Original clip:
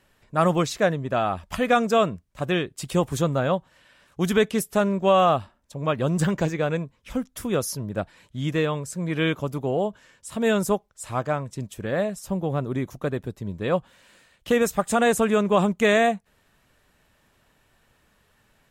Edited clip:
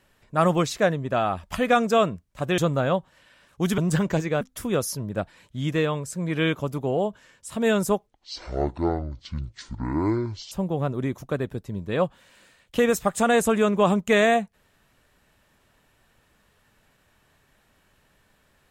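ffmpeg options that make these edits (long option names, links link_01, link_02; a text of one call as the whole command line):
ffmpeg -i in.wav -filter_complex "[0:a]asplit=6[link_01][link_02][link_03][link_04][link_05][link_06];[link_01]atrim=end=2.582[link_07];[link_02]atrim=start=3.168:end=4.372[link_08];[link_03]atrim=start=6.058:end=6.692[link_09];[link_04]atrim=start=7.208:end=10.874[link_10];[link_05]atrim=start=10.87:end=12.24,asetpts=PTS-STARTPTS,asetrate=24696,aresample=44100,atrim=end_sample=107887,asetpts=PTS-STARTPTS[link_11];[link_06]atrim=start=12.236[link_12];[link_07][link_08]acrossfade=duration=0.004:curve1=hsin:curve2=hsin[link_13];[link_13][link_09]acrossfade=duration=0.004:curve1=hsin:curve2=hsin[link_14];[link_14][link_10]acrossfade=duration=0.004:curve1=hsin:curve2=hsin[link_15];[link_15][link_11]acrossfade=duration=0.004:curve1=hsin:curve2=hsin[link_16];[link_16][link_12]acrossfade=duration=0.004:curve1=hsin:curve2=hsin" out.wav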